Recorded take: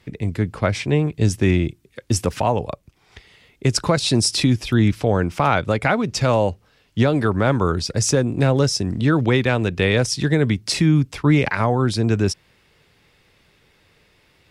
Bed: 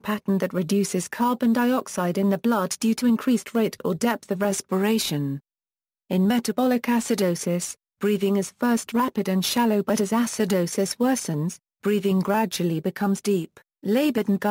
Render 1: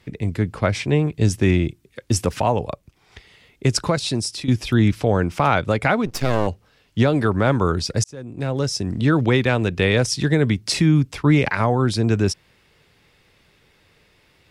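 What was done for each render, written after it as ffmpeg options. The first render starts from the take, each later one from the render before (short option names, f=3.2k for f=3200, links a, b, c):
-filter_complex "[0:a]asplit=3[a][b][c];[a]afade=t=out:st=6.05:d=0.02[d];[b]aeval=exprs='max(val(0),0)':c=same,afade=t=in:st=6.05:d=0.02,afade=t=out:st=6.46:d=0.02[e];[c]afade=t=in:st=6.46:d=0.02[f];[d][e][f]amix=inputs=3:normalize=0,asplit=3[g][h][i];[g]atrim=end=4.48,asetpts=PTS-STARTPTS,afade=t=out:st=3.68:d=0.8:silence=0.223872[j];[h]atrim=start=4.48:end=8.04,asetpts=PTS-STARTPTS,afade=t=in:d=0.004:c=hsin:silence=0.223872,afade=t=out:st=3.556:d=0.004:c=hsin[k];[i]atrim=start=8.04,asetpts=PTS-STARTPTS,afade=t=in:d=1[l];[j][k][l]concat=n=3:v=0:a=1"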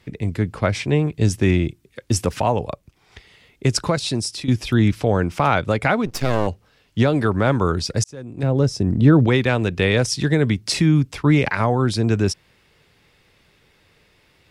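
-filter_complex "[0:a]asettb=1/sr,asplit=3[a][b][c];[a]atrim=end=8.434[d];[b]atrim=start=8.43:end=9.27,asetpts=PTS-STARTPTS,afade=t=in:d=0.004:c=qsin,afade=t=out:st=0.836:d=0.004:c=qsin,tiltshelf=f=970:g=6[e];[c]atrim=start=9.266[f];[d][e]acrossfade=d=0.004:c1=hsin:c2=qsin[g];[g][f]acrossfade=d=0.004:c1=qsin:c2=hsin"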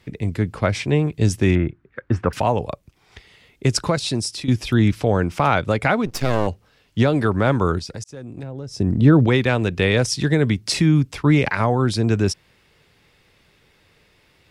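-filter_complex "[0:a]asettb=1/sr,asplit=3[a][b][c];[a]atrim=end=1.554[d];[b]atrim=start=1.55:end=2.33,asetpts=PTS-STARTPTS,afade=t=in:d=0.004:c=qsin,afade=t=out:st=0.776:d=0.004:c=qsin,lowpass=f=1.5k:t=q:w=3[e];[c]atrim=start=2.326[f];[d][e]acrossfade=d=0.004:c1=hsin:c2=qsin[g];[g][f]acrossfade=d=0.004:c1=qsin:c2=hsin,asplit=3[h][i][j];[h]afade=t=out:st=7.78:d=0.02[k];[i]acompressor=threshold=-29dB:ratio=5:attack=3.2:release=140:knee=1:detection=peak,afade=t=in:st=7.78:d=0.02,afade=t=out:st=8.77:d=0.02[l];[j]afade=t=in:st=8.77:d=0.02[m];[k][l][m]amix=inputs=3:normalize=0"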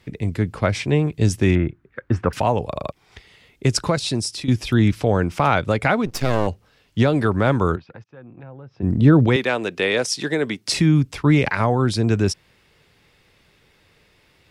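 -filter_complex "[0:a]asplit=3[a][b][c];[a]afade=t=out:st=7.75:d=0.02[d];[b]highpass=180,equalizer=f=190:t=q:w=4:g=-7,equalizer=f=280:t=q:w=4:g=-8,equalizer=f=410:t=q:w=4:g=-9,equalizer=f=610:t=q:w=4:g=-6,equalizer=f=2k:t=q:w=4:g=-6,lowpass=f=2.4k:w=0.5412,lowpass=f=2.4k:w=1.3066,afade=t=in:st=7.75:d=0.02,afade=t=out:st=8.82:d=0.02[e];[c]afade=t=in:st=8.82:d=0.02[f];[d][e][f]amix=inputs=3:normalize=0,asettb=1/sr,asplit=3[g][h][i];[g]atrim=end=9.364[j];[h]atrim=start=9.36:end=10.68,asetpts=PTS-STARTPTS,afade=t=in:d=0.004:c=qsin,afade=t=out:st=1.316:d=0.004:c=qsin,highpass=310[k];[i]atrim=start=10.676[l];[j][k]acrossfade=d=0.004:c1=hsin:c2=qsin[m];[m][l]acrossfade=d=0.004:c1=qsin:c2=hsin,asplit=4[n][o][p][q];[n]atrim=end=2.762[r];[o]atrim=start=2.678:end=2.762[s];[p]atrim=start=2.678:end=2.762[t];[q]atrim=start=2.918[u];[r][s]acrossfade=d=0.004:c1=hsin:c2=hsin[v];[v][t]acrossfade=d=0.004:c1=hsin:c2=hsin[w];[w][u]acrossfade=d=0.004:c1=hsin:c2=hsin"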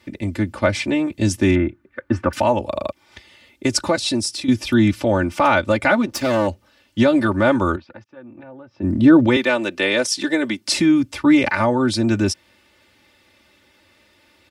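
-af "highpass=90,aecho=1:1:3.4:0.92"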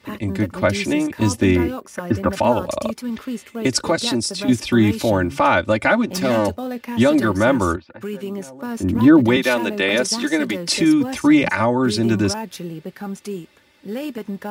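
-filter_complex "[1:a]volume=-6.5dB[a];[0:a][a]amix=inputs=2:normalize=0"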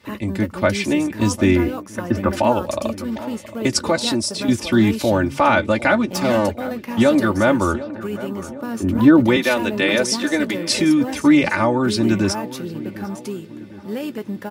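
-filter_complex "[0:a]asplit=2[a][b];[b]adelay=14,volume=-14dB[c];[a][c]amix=inputs=2:normalize=0,asplit=2[d][e];[e]adelay=753,lowpass=f=1.6k:p=1,volume=-15dB,asplit=2[f][g];[g]adelay=753,lowpass=f=1.6k:p=1,volume=0.51,asplit=2[h][i];[i]adelay=753,lowpass=f=1.6k:p=1,volume=0.51,asplit=2[j][k];[k]adelay=753,lowpass=f=1.6k:p=1,volume=0.51,asplit=2[l][m];[m]adelay=753,lowpass=f=1.6k:p=1,volume=0.51[n];[d][f][h][j][l][n]amix=inputs=6:normalize=0"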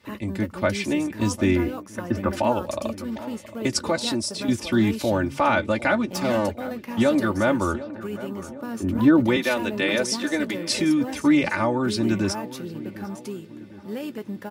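-af "volume=-5dB"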